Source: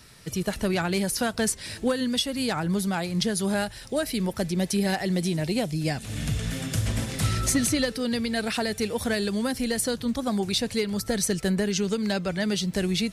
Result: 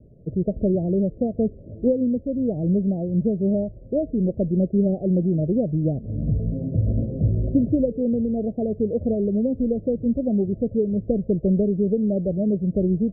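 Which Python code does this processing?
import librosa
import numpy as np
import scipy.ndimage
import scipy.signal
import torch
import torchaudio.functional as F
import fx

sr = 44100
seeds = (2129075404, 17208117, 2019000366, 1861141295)

y = fx.rattle_buzz(x, sr, strikes_db=-34.0, level_db=-28.0)
y = scipy.signal.sosfilt(scipy.signal.butter(12, 630.0, 'lowpass', fs=sr, output='sos'), y)
y = F.gain(torch.from_numpy(y), 5.5).numpy()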